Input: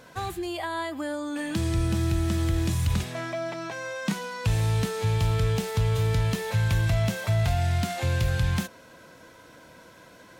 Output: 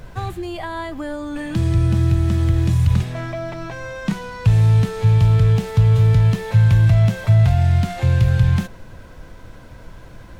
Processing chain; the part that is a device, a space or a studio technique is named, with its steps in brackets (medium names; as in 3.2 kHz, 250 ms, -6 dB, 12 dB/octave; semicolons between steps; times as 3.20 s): car interior (peaking EQ 130 Hz +7 dB 0.85 oct; treble shelf 4.3 kHz -8 dB; brown noise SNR 19 dB); peaking EQ 95 Hz +4 dB 1 oct; trim +3 dB